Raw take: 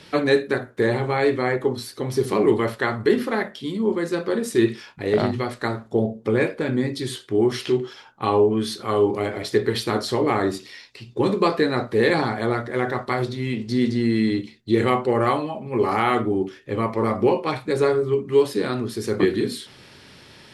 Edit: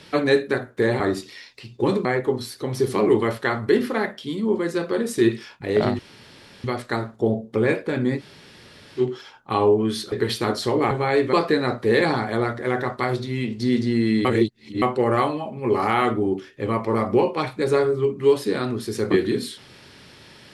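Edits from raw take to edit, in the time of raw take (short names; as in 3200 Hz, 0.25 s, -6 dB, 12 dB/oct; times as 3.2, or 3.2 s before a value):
1–1.42 swap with 10.37–11.42
5.36 insert room tone 0.65 s
6.91–7.71 room tone, crossfade 0.06 s
8.84–9.58 cut
14.34–14.91 reverse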